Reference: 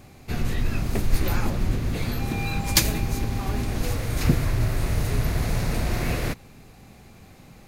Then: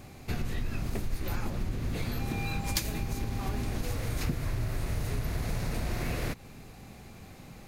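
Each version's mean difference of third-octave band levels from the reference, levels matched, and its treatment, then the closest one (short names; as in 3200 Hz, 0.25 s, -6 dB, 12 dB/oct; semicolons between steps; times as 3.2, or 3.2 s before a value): 2.5 dB: compressor 4:1, threshold -29 dBFS, peak gain reduction 14 dB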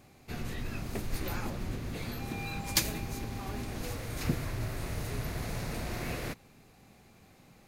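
1.5 dB: low shelf 110 Hz -7.5 dB; gain -8 dB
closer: second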